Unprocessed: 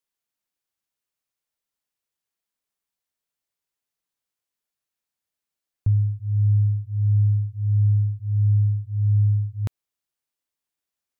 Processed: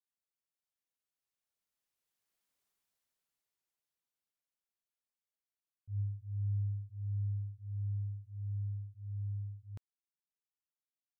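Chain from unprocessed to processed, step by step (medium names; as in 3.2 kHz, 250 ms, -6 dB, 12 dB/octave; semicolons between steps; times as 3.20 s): Doppler pass-by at 2.60 s, 8 m/s, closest 4.1 m; slow attack 129 ms; trim +2 dB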